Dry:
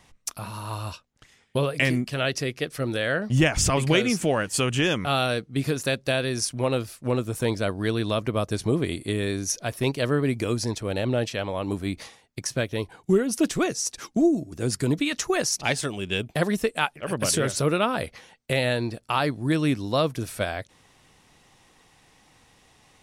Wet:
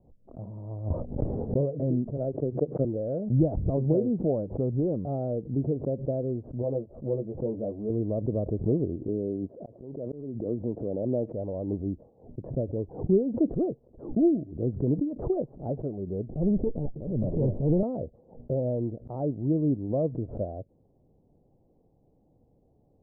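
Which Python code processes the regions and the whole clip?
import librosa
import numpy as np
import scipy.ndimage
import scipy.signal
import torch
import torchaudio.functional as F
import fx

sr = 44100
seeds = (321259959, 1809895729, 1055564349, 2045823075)

y = fx.chain(x, sr, fx.lowpass(hz=2000.0, slope=24),
    fx.env_flatten(amount_pct=100), at=(0.9, 1.61))
y = fx.chain(y, sr, fx.highpass(hz=110.0, slope=24),
    fx.transient(attack_db=6, sustain_db=-11), at=(2.17, 2.85))
y = fx.chain(y, sr, fx.lowpass(hz=1100.0, slope=12),
    fx.low_shelf(hz=460.0, db=-6.5),
    fx.doubler(ms=14.0, db=-3), at=(6.62, 7.9))
y = fx.chain(y, sr, fx.highpass(hz=150.0, slope=12),
    fx.auto_swell(attack_ms=528.0),
    fx.pre_swell(db_per_s=52.0), at=(9.08, 11.33))
y = fx.chain(y, sr, fx.lower_of_two(delay_ms=0.44),
    fx.low_shelf(hz=290.0, db=7.5),
    fx.transient(attack_db=-11, sustain_db=6), at=(16.27, 17.83))
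y = scipy.signal.sosfilt(scipy.signal.butter(6, 630.0, 'lowpass', fs=sr, output='sos'), y)
y = fx.pre_swell(y, sr, db_per_s=130.0)
y = F.gain(torch.from_numpy(y), -2.0).numpy()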